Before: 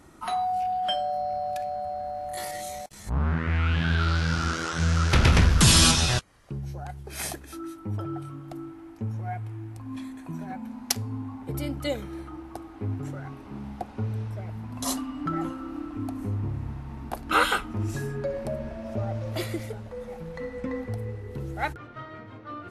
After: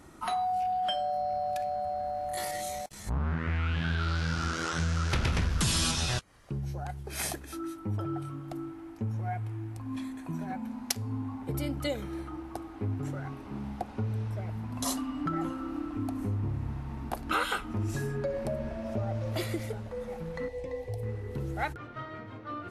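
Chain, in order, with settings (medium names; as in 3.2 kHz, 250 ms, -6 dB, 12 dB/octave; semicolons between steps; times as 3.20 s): compression 3:1, threshold -28 dBFS, peak gain reduction 11 dB; 20.48–21.03 s: static phaser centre 560 Hz, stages 4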